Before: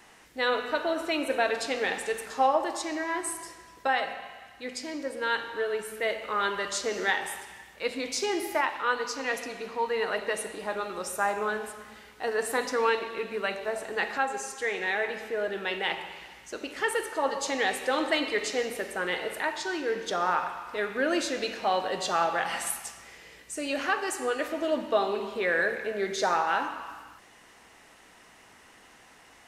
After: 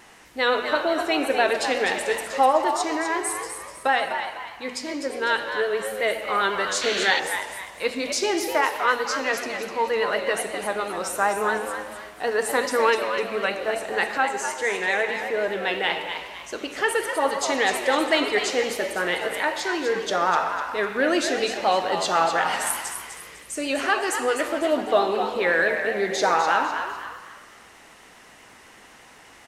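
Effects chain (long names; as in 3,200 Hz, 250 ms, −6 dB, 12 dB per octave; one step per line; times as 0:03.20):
pitch vibrato 8 Hz 39 cents
echo with shifted repeats 251 ms, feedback 36%, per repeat +100 Hz, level −8 dB
sound drawn into the spectrogram noise, 0:06.81–0:07.20, 1,400–4,600 Hz −33 dBFS
level +5 dB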